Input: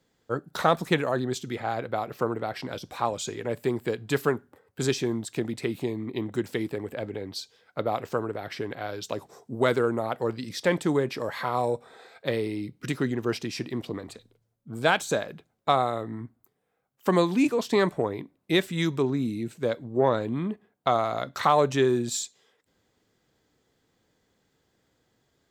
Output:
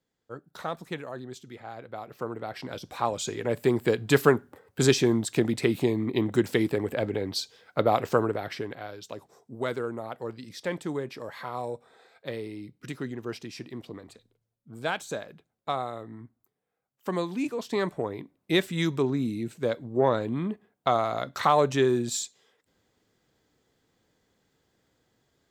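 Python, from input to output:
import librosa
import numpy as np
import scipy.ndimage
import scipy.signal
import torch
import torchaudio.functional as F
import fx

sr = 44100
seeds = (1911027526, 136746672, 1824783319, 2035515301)

y = fx.gain(x, sr, db=fx.line((1.75, -11.5), (2.67, -2.5), (3.97, 5.0), (8.25, 5.0), (8.98, -7.5), (17.4, -7.5), (18.58, -0.5)))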